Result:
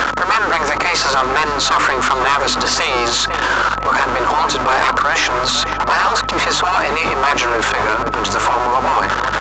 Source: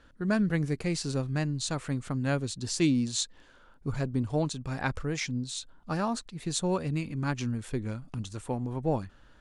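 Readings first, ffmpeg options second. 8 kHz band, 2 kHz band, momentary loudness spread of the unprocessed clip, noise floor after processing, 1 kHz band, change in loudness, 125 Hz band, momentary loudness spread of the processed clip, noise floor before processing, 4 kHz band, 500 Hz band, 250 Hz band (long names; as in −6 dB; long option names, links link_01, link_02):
+13.5 dB, +24.0 dB, 9 LU, −21 dBFS, +26.0 dB, +16.0 dB, −1.5 dB, 2 LU, −57 dBFS, +20.0 dB, +14.5 dB, +3.0 dB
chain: -filter_complex "[0:a]aeval=exprs='val(0)+0.5*0.00891*sgn(val(0))':channel_layout=same,highpass=140,bandreject=frequency=50:width_type=h:width=6,bandreject=frequency=100:width_type=h:width=6,bandreject=frequency=150:width_type=h:width=6,bandreject=frequency=200:width_type=h:width=6,bandreject=frequency=250:width_type=h:width=6,bandreject=frequency=300:width_type=h:width=6,acrossover=split=3600[link_01][link_02];[link_02]acompressor=threshold=-41dB:ratio=4:attack=1:release=60[link_03];[link_01][link_03]amix=inputs=2:normalize=0,afftfilt=real='re*lt(hypot(re,im),0.0631)':imag='im*lt(hypot(re,im),0.0631)':win_size=1024:overlap=0.75,equalizer=frequency=1100:width_type=o:width=1.7:gain=14.5,acrossover=split=230|1700[link_04][link_05][link_06];[link_04]acompressor=threshold=-60dB:ratio=16[link_07];[link_07][link_05][link_06]amix=inputs=3:normalize=0,aeval=exprs='val(0)+0.00112*(sin(2*PI*50*n/s)+sin(2*PI*2*50*n/s)/2+sin(2*PI*3*50*n/s)/3+sin(2*PI*4*50*n/s)/4+sin(2*PI*5*50*n/s)/5)':channel_layout=same,aresample=16000,asoftclip=type=hard:threshold=-27dB,aresample=44100,aeval=exprs='val(0)+0.00398*sin(2*PI*1300*n/s)':channel_layout=same,asplit=2[link_08][link_09];[link_09]adelay=500,lowpass=frequency=960:poles=1,volume=-9dB,asplit=2[link_10][link_11];[link_11]adelay=500,lowpass=frequency=960:poles=1,volume=0.53,asplit=2[link_12][link_13];[link_13]adelay=500,lowpass=frequency=960:poles=1,volume=0.53,asplit=2[link_14][link_15];[link_15]adelay=500,lowpass=frequency=960:poles=1,volume=0.53,asplit=2[link_16][link_17];[link_17]adelay=500,lowpass=frequency=960:poles=1,volume=0.53,asplit=2[link_18][link_19];[link_19]adelay=500,lowpass=frequency=960:poles=1,volume=0.53[link_20];[link_08][link_10][link_12][link_14][link_16][link_18][link_20]amix=inputs=7:normalize=0,alimiter=level_in=31dB:limit=-1dB:release=50:level=0:latency=1,volume=-6dB"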